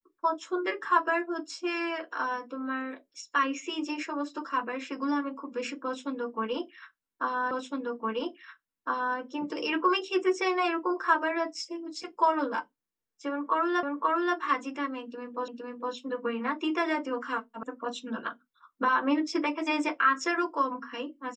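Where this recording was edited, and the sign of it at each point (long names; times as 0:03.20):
0:07.51: the same again, the last 1.66 s
0:13.83: the same again, the last 0.53 s
0:15.48: the same again, the last 0.46 s
0:17.63: cut off before it has died away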